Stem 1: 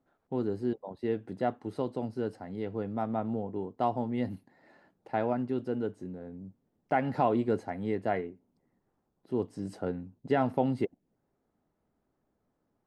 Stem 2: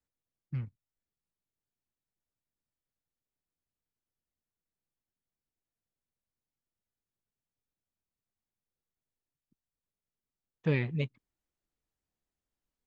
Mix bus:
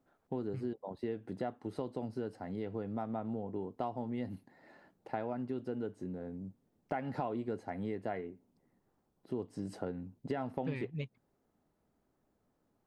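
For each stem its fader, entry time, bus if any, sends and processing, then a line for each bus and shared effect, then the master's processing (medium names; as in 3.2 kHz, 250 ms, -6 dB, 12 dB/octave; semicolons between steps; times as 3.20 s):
+0.5 dB, 0.00 s, no send, none
+1.5 dB, 0.00 s, no send, upward expansion 1.5:1, over -37 dBFS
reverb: none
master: compression 4:1, threshold -35 dBFS, peak gain reduction 13 dB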